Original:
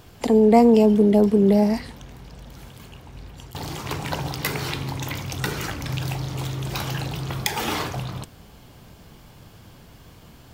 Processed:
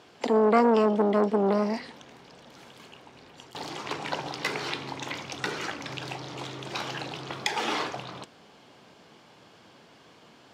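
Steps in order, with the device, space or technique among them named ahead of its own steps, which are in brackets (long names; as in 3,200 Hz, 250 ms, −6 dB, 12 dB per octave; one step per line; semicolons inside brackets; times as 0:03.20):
public-address speaker with an overloaded transformer (saturating transformer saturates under 600 Hz; band-pass filter 290–5,500 Hz)
0:01.94–0:03.70: high-shelf EQ 11,000 Hz +9.5 dB
level −1.5 dB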